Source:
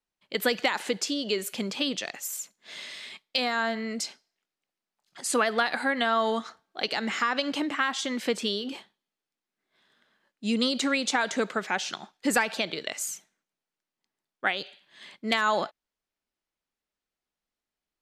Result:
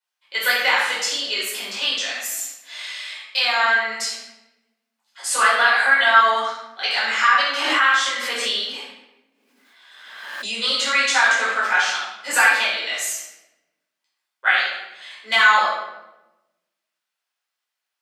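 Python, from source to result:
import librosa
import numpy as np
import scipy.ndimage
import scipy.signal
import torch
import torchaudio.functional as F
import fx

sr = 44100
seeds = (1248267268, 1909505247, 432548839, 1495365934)

y = scipy.signal.sosfilt(scipy.signal.butter(2, 1000.0, 'highpass', fs=sr, output='sos'), x)
y = fx.dynamic_eq(y, sr, hz=1400.0, q=1.2, threshold_db=-39.0, ratio=4.0, max_db=4)
y = fx.room_shoebox(y, sr, seeds[0], volume_m3=420.0, walls='mixed', distance_m=4.9)
y = fx.pre_swell(y, sr, db_per_s=36.0, at=(7.57, 10.57))
y = y * librosa.db_to_amplitude(-2.0)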